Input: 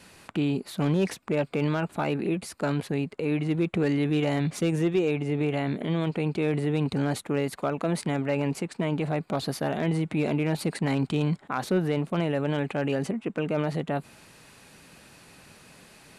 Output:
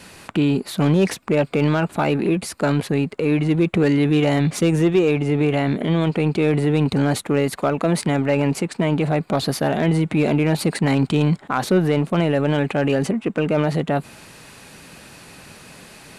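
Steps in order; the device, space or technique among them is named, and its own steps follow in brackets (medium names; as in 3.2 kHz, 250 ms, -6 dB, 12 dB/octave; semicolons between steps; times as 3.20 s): parallel distortion (in parallel at -11 dB: hard clipper -32 dBFS, distortion -5 dB); on the sum: trim +7 dB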